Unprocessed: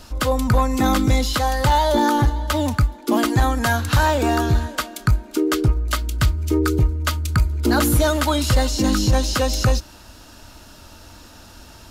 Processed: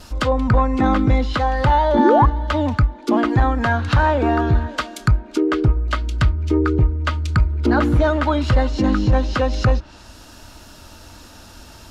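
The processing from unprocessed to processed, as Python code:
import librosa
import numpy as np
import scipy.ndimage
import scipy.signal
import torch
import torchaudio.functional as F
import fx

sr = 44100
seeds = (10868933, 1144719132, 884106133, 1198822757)

y = fx.spec_paint(x, sr, seeds[0], shape='rise', start_s=1.98, length_s=0.28, low_hz=210.0, high_hz=1200.0, level_db=-16.0)
y = fx.vibrato(y, sr, rate_hz=0.4, depth_cents=6.4)
y = fx.env_lowpass_down(y, sr, base_hz=2100.0, full_db=-15.5)
y = y * librosa.db_to_amplitude(1.5)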